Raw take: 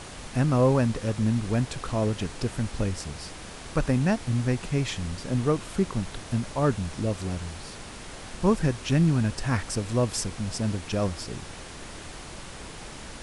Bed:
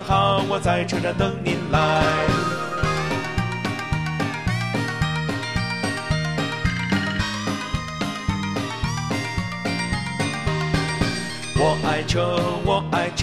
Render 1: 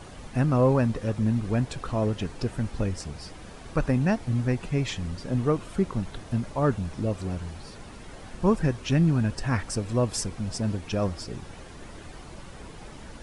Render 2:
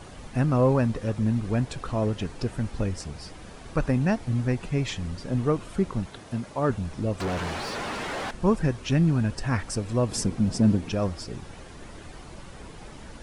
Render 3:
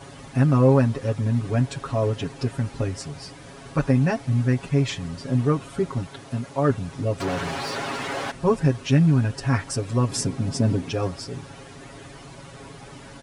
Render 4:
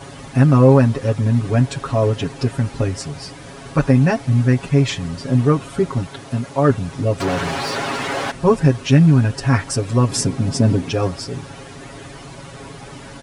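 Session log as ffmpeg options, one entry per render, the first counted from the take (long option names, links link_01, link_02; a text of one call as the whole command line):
ffmpeg -i in.wav -af "afftdn=noise_reduction=9:noise_floor=-42" out.wav
ffmpeg -i in.wav -filter_complex "[0:a]asettb=1/sr,asplit=3[link_01][link_02][link_03];[link_01]atrim=end=6.064[link_04];[link_02]atrim=start=6.06:end=6.7,asetpts=PTS-STARTPTS,afade=type=in:duration=0.004:curve=qsin,afade=type=out:start_time=0.636:duration=0.004:curve=qsin,highpass=frequency=170:poles=1[link_05];[link_03]atrim=start=6.696[link_06];[link_04][link_05]acrossfade=duration=0.004:curve1=hsin:curve2=qsin[link_07];[link_07][link_06]acrossfade=duration=0.004:curve1=qsin:curve2=hsin,asettb=1/sr,asplit=3[link_08][link_09][link_10];[link_08]atrim=end=7.204[link_11];[link_09]atrim=start=7.2:end=8.31,asetpts=PTS-STARTPTS,afade=type=in:duration=0.004:curve=qsin,afade=type=out:start_time=1.106:duration=0.004:curve=qsin,asplit=2[link_12][link_13];[link_13]highpass=frequency=720:poles=1,volume=29dB,asoftclip=type=tanh:threshold=-20.5dB[link_14];[link_12][link_14]amix=inputs=2:normalize=0,lowpass=frequency=2300:poles=1,volume=-6dB[link_15];[link_10]atrim=start=8.306[link_16];[link_11][link_15]acrossfade=duration=0.004:curve1=hsin:curve2=qsin[link_17];[link_17][link_16]acrossfade=duration=0.004:curve1=qsin:curve2=hsin,asettb=1/sr,asplit=3[link_18][link_19][link_20];[link_18]atrim=end=10.094[link_21];[link_19]atrim=start=10.09:end=10.92,asetpts=PTS-STARTPTS,afade=type=in:duration=0.004:curve=qsin,afade=type=out:start_time=0.826:duration=0.004:curve=qsin,equalizer=frequency=220:width=0.69:gain=10[link_22];[link_20]atrim=start=10.916[link_23];[link_21][link_22]acrossfade=duration=0.004:curve1=hsin:curve2=qsin[link_24];[link_24][link_23]acrossfade=duration=0.004:curve1=qsin:curve2=hsin" out.wav
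ffmpeg -i in.wav -af "highpass=60,aecho=1:1:7.3:0.95" out.wav
ffmpeg -i in.wav -af "volume=6dB,alimiter=limit=-1dB:level=0:latency=1" out.wav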